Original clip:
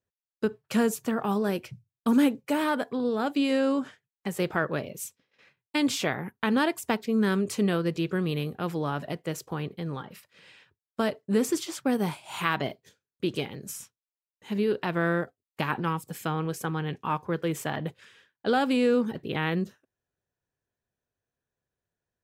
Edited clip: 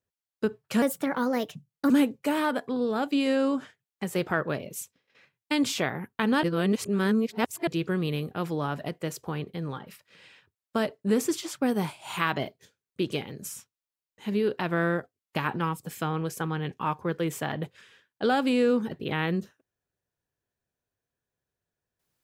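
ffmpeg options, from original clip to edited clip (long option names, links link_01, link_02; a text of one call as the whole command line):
ffmpeg -i in.wav -filter_complex "[0:a]asplit=5[link_01][link_02][link_03][link_04][link_05];[link_01]atrim=end=0.824[link_06];[link_02]atrim=start=0.82:end=2.14,asetpts=PTS-STARTPTS,asetrate=53802,aresample=44100[link_07];[link_03]atrim=start=2.136:end=6.672[link_08];[link_04]atrim=start=6.668:end=7.912,asetpts=PTS-STARTPTS,areverse[link_09];[link_05]atrim=start=7.908[link_10];[link_06][link_07]acrossfade=duration=0.004:curve1=hsin:curve2=hsin[link_11];[link_11][link_08]acrossfade=duration=0.004:curve1=hsin:curve2=hsin[link_12];[link_12][link_09]acrossfade=duration=0.004:curve1=hsin:curve2=hsin[link_13];[link_13][link_10]acrossfade=duration=0.004:curve1=hsin:curve2=hsin" out.wav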